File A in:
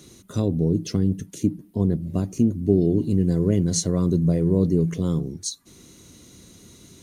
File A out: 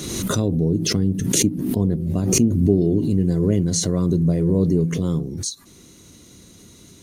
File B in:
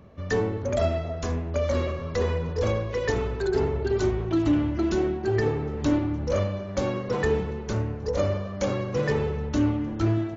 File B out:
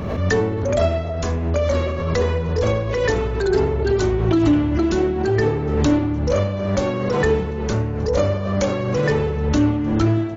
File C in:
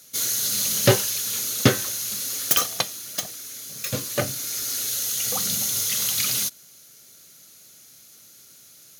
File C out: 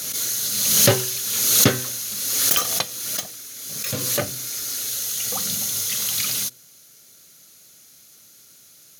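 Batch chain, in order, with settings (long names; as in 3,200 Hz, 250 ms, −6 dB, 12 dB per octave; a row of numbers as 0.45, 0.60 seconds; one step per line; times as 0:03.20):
hum removal 125.8 Hz, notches 4
background raised ahead of every attack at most 34 dB per second
loudness normalisation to −20 LKFS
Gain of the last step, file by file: +1.0, +5.5, 0.0 decibels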